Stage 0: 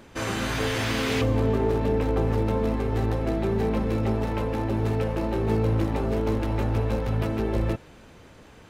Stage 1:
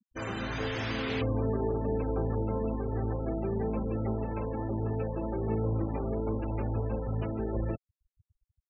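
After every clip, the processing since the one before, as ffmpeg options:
ffmpeg -i in.wav -af "afftfilt=real='re*gte(hypot(re,im),0.0316)':imag='im*gte(hypot(re,im),0.0316)':win_size=1024:overlap=0.75,volume=-6.5dB" out.wav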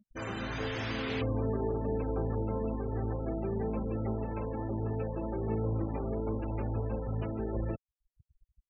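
ffmpeg -i in.wav -af "anlmdn=0.00158,acompressor=mode=upward:threshold=-44dB:ratio=2.5,volume=-2dB" out.wav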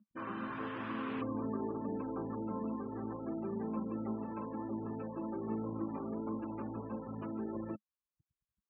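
ffmpeg -i in.wav -af "highpass=200,equalizer=frequency=210:width_type=q:width=4:gain=6,equalizer=frequency=300:width_type=q:width=4:gain=5,equalizer=frequency=460:width_type=q:width=4:gain=-6,equalizer=frequency=710:width_type=q:width=4:gain=-6,equalizer=frequency=1100:width_type=q:width=4:gain=9,equalizer=frequency=2100:width_type=q:width=4:gain=-8,lowpass=frequency=2500:width=0.5412,lowpass=frequency=2500:width=1.3066,volume=-4dB" out.wav

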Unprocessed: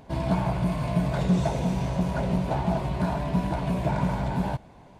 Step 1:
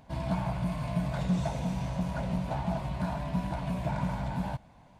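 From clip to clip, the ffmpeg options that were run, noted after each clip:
ffmpeg -i in.wav -af "equalizer=frequency=390:width=2.4:gain=-10.5,volume=-5dB" out.wav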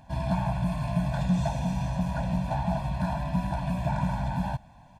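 ffmpeg -i in.wav -af "aecho=1:1:1.2:0.81" out.wav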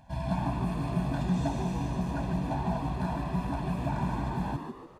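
ffmpeg -i in.wav -filter_complex "[0:a]asplit=6[link_01][link_02][link_03][link_04][link_05][link_06];[link_02]adelay=146,afreqshift=100,volume=-7dB[link_07];[link_03]adelay=292,afreqshift=200,volume=-14.7dB[link_08];[link_04]adelay=438,afreqshift=300,volume=-22.5dB[link_09];[link_05]adelay=584,afreqshift=400,volume=-30.2dB[link_10];[link_06]adelay=730,afreqshift=500,volume=-38dB[link_11];[link_01][link_07][link_08][link_09][link_10][link_11]amix=inputs=6:normalize=0,volume=-3.5dB" out.wav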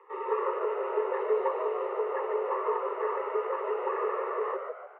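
ffmpeg -i in.wav -af "highpass=frequency=160:width_type=q:width=0.5412,highpass=frequency=160:width_type=q:width=1.307,lowpass=frequency=2200:width_type=q:width=0.5176,lowpass=frequency=2200:width_type=q:width=0.7071,lowpass=frequency=2200:width_type=q:width=1.932,afreqshift=250,volume=2.5dB" out.wav

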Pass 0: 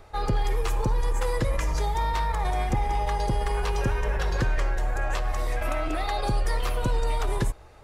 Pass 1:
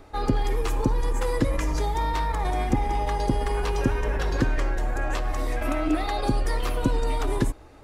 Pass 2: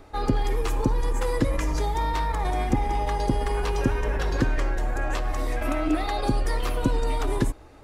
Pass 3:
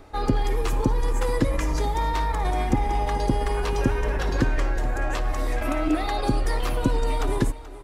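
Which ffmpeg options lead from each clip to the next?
ffmpeg -i in.wav -af "equalizer=frequency=280:width=2.7:gain=13.5" out.wav
ffmpeg -i in.wav -af anull out.wav
ffmpeg -i in.wav -af "aecho=1:1:431:0.15,volume=1dB" out.wav

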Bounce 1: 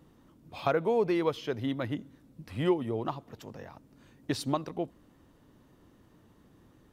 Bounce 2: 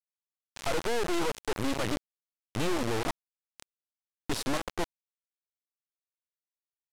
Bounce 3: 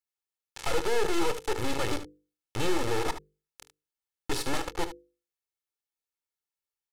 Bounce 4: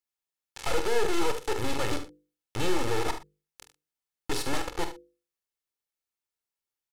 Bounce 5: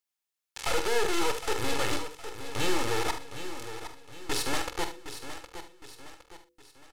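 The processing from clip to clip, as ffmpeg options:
ffmpeg -i in.wav -af "aeval=exprs='(tanh(56.2*val(0)+0.4)-tanh(0.4))/56.2':channel_layout=same,acrusher=bits=5:mix=0:aa=0.000001,lowpass=11000,volume=7dB" out.wav
ffmpeg -i in.wav -af "bandreject=frequency=50:width_type=h:width=6,bandreject=frequency=100:width_type=h:width=6,bandreject=frequency=150:width_type=h:width=6,bandreject=frequency=200:width_type=h:width=6,bandreject=frequency=250:width_type=h:width=6,bandreject=frequency=300:width_type=h:width=6,bandreject=frequency=350:width_type=h:width=6,bandreject=frequency=400:width_type=h:width=6,bandreject=frequency=450:width_type=h:width=6,bandreject=frequency=500:width_type=h:width=6,aecho=1:1:2.3:0.56,aecho=1:1:24|74:0.133|0.266" out.wav
ffmpeg -i in.wav -filter_complex "[0:a]asplit=2[link_01][link_02];[link_02]adelay=46,volume=-10dB[link_03];[link_01][link_03]amix=inputs=2:normalize=0" out.wav
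ffmpeg -i in.wav -filter_complex "[0:a]tiltshelf=frequency=850:gain=-3,asplit=2[link_01][link_02];[link_02]aecho=0:1:763|1526|2289|3052:0.282|0.121|0.0521|0.0224[link_03];[link_01][link_03]amix=inputs=2:normalize=0" out.wav

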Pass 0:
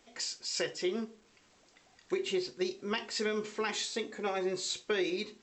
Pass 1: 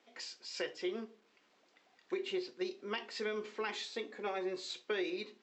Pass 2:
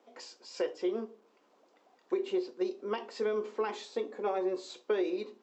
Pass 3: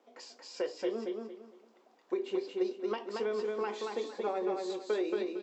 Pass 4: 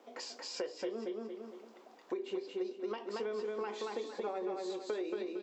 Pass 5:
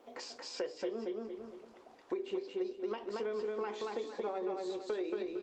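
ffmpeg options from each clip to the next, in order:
ffmpeg -i in.wav -filter_complex "[0:a]acrossover=split=200 5000:gain=0.0631 1 0.158[link_01][link_02][link_03];[link_01][link_02][link_03]amix=inputs=3:normalize=0,volume=-4dB" out.wav
ffmpeg -i in.wav -af "equalizer=frequency=125:width_type=o:width=1:gain=-7,equalizer=frequency=250:width_type=o:width=1:gain=5,equalizer=frequency=500:width_type=o:width=1:gain=7,equalizer=frequency=1000:width_type=o:width=1:gain=6,equalizer=frequency=2000:width_type=o:width=1:gain=-6,equalizer=frequency=4000:width_type=o:width=1:gain=-4" out.wav
ffmpeg -i in.wav -af "aecho=1:1:228|456|684|912:0.668|0.18|0.0487|0.0132,volume=-2dB" out.wav
ffmpeg -i in.wav -af "acompressor=threshold=-48dB:ratio=2.5,volume=7dB" out.wav
ffmpeg -i in.wav -af "volume=1dB" -ar 48000 -c:a libopus -b:a 24k out.opus

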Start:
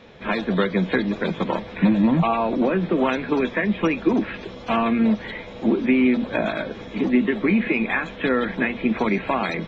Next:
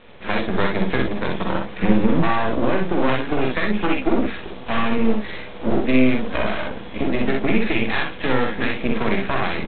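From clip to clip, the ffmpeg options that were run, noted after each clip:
ffmpeg -i in.wav -af "bandreject=frequency=50:width_type=h:width=6,bandreject=frequency=100:width_type=h:width=6,bandreject=frequency=150:width_type=h:width=6,bandreject=frequency=200:width_type=h:width=6,bandreject=frequency=250:width_type=h:width=6,aresample=8000,aeval=exprs='max(val(0),0)':channel_layout=same,aresample=44100,aecho=1:1:47|62:0.501|0.631,volume=3dB" out.wav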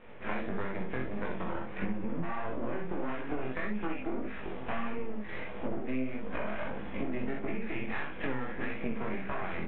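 ffmpeg -i in.wav -af "lowpass=frequency=2600:width=0.5412,lowpass=frequency=2600:width=1.3066,acompressor=threshold=-24dB:ratio=10,flanger=delay=19.5:depth=4.4:speed=1.6,volume=-2dB" out.wav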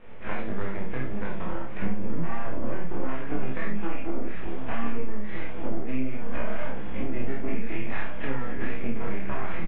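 ffmpeg -i in.wav -filter_complex "[0:a]lowshelf=frequency=98:gain=9,asplit=2[link_01][link_02];[link_02]adelay=30,volume=-3.5dB[link_03];[link_01][link_03]amix=inputs=2:normalize=0,asplit=2[link_04][link_05];[link_05]adelay=1516,volume=-9dB,highshelf=frequency=4000:gain=-34.1[link_06];[link_04][link_06]amix=inputs=2:normalize=0" out.wav

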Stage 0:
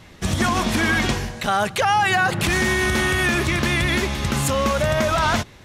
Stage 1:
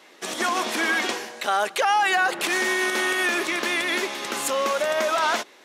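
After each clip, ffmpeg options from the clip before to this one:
ffmpeg -i in.wav -af "highpass=frequency=320:width=0.5412,highpass=frequency=320:width=1.3066,volume=-2dB" out.wav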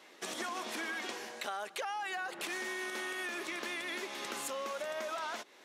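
ffmpeg -i in.wav -af "acompressor=threshold=-31dB:ratio=4,volume=-6.5dB" out.wav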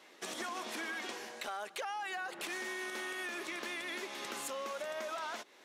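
ffmpeg -i in.wav -af "volume=30dB,asoftclip=hard,volume=-30dB,volume=-1.5dB" out.wav

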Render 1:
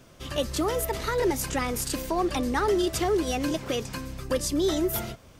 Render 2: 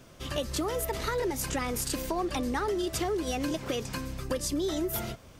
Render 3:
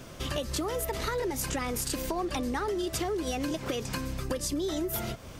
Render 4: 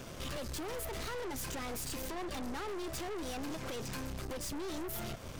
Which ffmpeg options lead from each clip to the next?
ffmpeg -i in.wav -af "acompressor=threshold=-27dB:ratio=6" out.wav
ffmpeg -i in.wav -af "acompressor=threshold=-40dB:ratio=2.5,volume=7.5dB" out.wav
ffmpeg -i in.wav -af "aeval=exprs='(tanh(112*val(0)+0.55)-tanh(0.55))/112':channel_layout=same,volume=2.5dB" out.wav

